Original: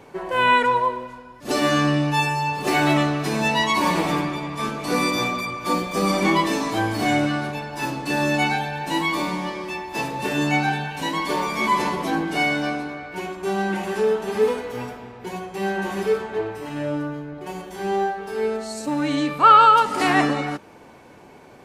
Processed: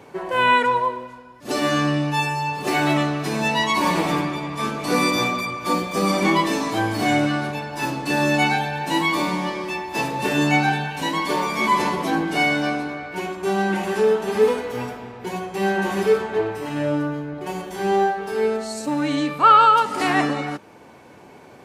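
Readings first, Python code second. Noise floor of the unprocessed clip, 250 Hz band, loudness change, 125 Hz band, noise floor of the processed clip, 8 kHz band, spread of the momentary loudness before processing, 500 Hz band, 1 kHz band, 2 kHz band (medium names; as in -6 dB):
-46 dBFS, +1.0 dB, +0.5 dB, +0.5 dB, -45 dBFS, +1.0 dB, 12 LU, +2.0 dB, 0.0 dB, +1.0 dB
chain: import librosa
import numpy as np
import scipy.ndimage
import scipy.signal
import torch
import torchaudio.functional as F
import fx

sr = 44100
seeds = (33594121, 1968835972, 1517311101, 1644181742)

y = scipy.signal.sosfilt(scipy.signal.butter(2, 60.0, 'highpass', fs=sr, output='sos'), x)
y = fx.rider(y, sr, range_db=4, speed_s=2.0)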